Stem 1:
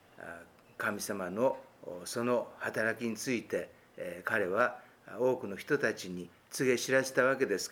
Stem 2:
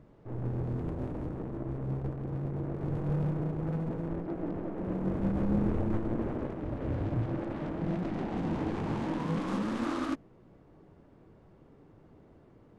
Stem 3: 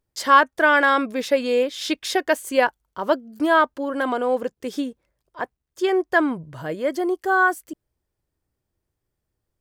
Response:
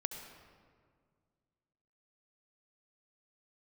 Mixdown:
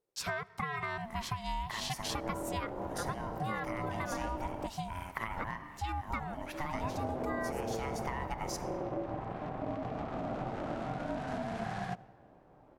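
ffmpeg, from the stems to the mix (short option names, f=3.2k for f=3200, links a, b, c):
-filter_complex "[0:a]acompressor=threshold=-33dB:ratio=5,adelay=900,volume=0dB,asplit=2[a][b];[b]volume=-4dB[c];[1:a]adelay=1800,volume=-2dB,asplit=3[d][e][f];[d]atrim=end=4.67,asetpts=PTS-STARTPTS,afade=t=out:st=4.666:d=0.004:c=hsin[g];[e]atrim=start=4.67:end=6.74,asetpts=PTS-STARTPTS,volume=0[h];[f]atrim=start=6.74,asetpts=PTS-STARTPTS,afade=t=in:d=0.004:c=hsin[i];[g][h][i]concat=n=3:v=0:a=1,asplit=2[j][k];[k]volume=-15dB[l];[2:a]asubboost=boost=10:cutoff=68,acompressor=threshold=-21dB:ratio=6,volume=-6.5dB,asplit=3[m][n][o];[n]volume=-17dB[p];[o]apad=whole_len=380129[q];[a][q]sidechaincompress=threshold=-34dB:ratio=8:attack=16:release=964[r];[3:a]atrim=start_sample=2205[s];[c][l][p]amix=inputs=3:normalize=0[t];[t][s]afir=irnorm=-1:irlink=0[u];[r][j][m][u]amix=inputs=4:normalize=0,aeval=exprs='val(0)*sin(2*PI*450*n/s)':c=same,acompressor=threshold=-32dB:ratio=4"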